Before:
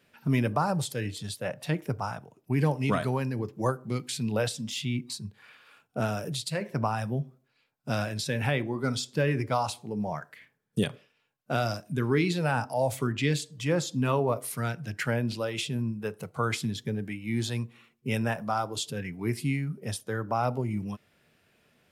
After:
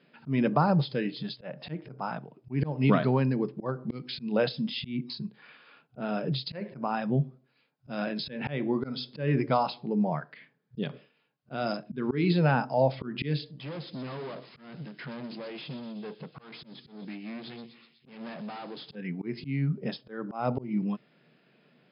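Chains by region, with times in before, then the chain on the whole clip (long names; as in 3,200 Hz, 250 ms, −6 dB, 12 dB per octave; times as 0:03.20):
0:13.51–0:18.95: low-pass filter 10,000 Hz + tube saturation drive 40 dB, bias 0.6 + delay with a high-pass on its return 124 ms, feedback 67%, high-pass 3,900 Hz, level −6 dB
whole clip: brick-wall band-pass 120–5,200 Hz; parametric band 220 Hz +6 dB 2.7 octaves; volume swells 208 ms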